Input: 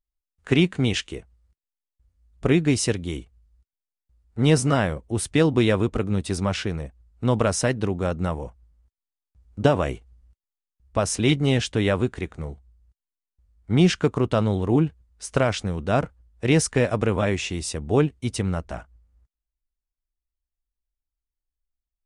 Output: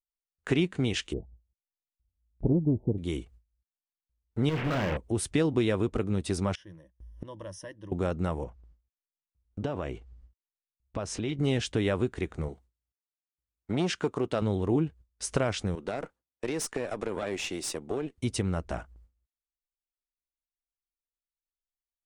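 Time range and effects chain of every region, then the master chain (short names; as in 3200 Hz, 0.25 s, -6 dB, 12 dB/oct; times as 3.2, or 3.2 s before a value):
1.13–2.98 rippled Chebyshev low-pass 880 Hz, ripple 3 dB + low shelf 230 Hz +7.5 dB + Doppler distortion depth 0.31 ms
4.49–4.97 delta modulation 16 kbps, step -21.5 dBFS + hard clip -22 dBFS + doubler 38 ms -9 dB
6.55–7.92 ripple EQ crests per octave 1.2, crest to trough 15 dB + flipped gate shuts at -26 dBFS, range -26 dB
8.44–11.39 air absorption 76 m + compressor 2:1, threshold -37 dBFS
12.48–14.42 HPF 260 Hz 6 dB/oct + core saturation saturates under 470 Hz
15.75–18.18 HPF 280 Hz + compressor, threshold -22 dBFS + tube stage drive 19 dB, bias 0.75
whole clip: gate with hold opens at -48 dBFS; bell 360 Hz +3.5 dB 0.72 oct; compressor 2:1, threshold -33 dBFS; gain +2 dB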